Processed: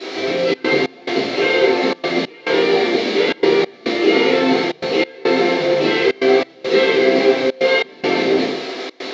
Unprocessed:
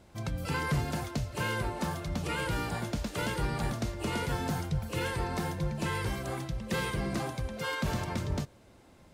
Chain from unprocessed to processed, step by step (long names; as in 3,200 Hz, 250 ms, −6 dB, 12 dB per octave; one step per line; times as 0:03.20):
flat-topped bell 920 Hz −12 dB
mid-hump overdrive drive 20 dB, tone 2,900 Hz, clips at −32.5 dBFS
in parallel at −3.5 dB: bit-depth reduction 6 bits, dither triangular
on the sum: loudspeaker in its box 320–4,800 Hz, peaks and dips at 460 Hz +10 dB, 710 Hz +7 dB, 2,200 Hz +10 dB, 4,000 Hz +7 dB
convolution reverb RT60 0.60 s, pre-delay 3 ms, DRR −13.5 dB
gate pattern "xxxxx.xx..xxx" 140 BPM −24 dB
level −7 dB